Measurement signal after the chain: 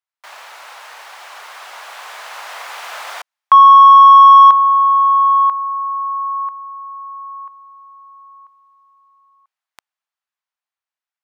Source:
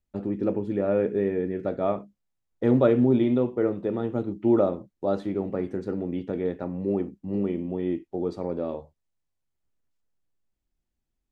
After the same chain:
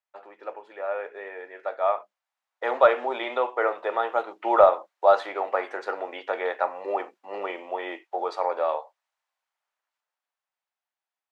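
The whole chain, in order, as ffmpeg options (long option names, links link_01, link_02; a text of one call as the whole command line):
ffmpeg -i in.wav -filter_complex "[0:a]highpass=frequency=740:width=0.5412,highpass=frequency=740:width=1.3066,dynaudnorm=framelen=600:gausssize=9:maxgain=13dB,asplit=2[link_01][link_02];[link_02]highpass=frequency=720:poles=1,volume=8dB,asoftclip=type=tanh:threshold=-2dB[link_03];[link_01][link_03]amix=inputs=2:normalize=0,lowpass=frequency=1100:poles=1,volume=-6dB,volume=4dB" out.wav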